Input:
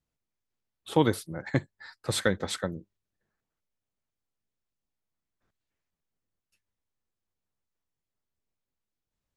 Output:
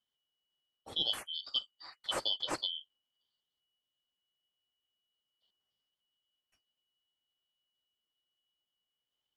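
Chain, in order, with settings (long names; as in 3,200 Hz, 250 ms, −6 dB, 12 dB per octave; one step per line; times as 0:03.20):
band-splitting scrambler in four parts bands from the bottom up 3412
high-shelf EQ 3,000 Hz −10 dB
reversed playback
downward compressor 5 to 1, threshold −32 dBFS, peak gain reduction 10.5 dB
reversed playback
level +2 dB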